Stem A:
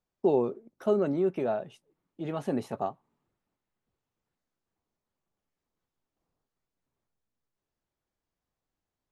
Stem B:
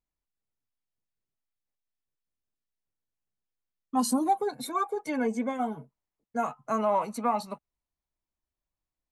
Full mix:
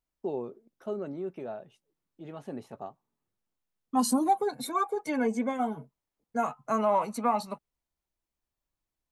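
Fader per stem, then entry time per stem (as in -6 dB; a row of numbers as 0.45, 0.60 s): -9.0, +0.5 dB; 0.00, 0.00 s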